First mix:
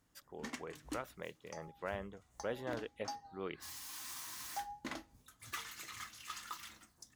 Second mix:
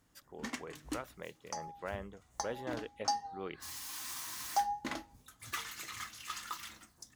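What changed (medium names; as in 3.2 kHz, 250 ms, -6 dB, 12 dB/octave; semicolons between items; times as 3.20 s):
first sound +4.0 dB; second sound +11.5 dB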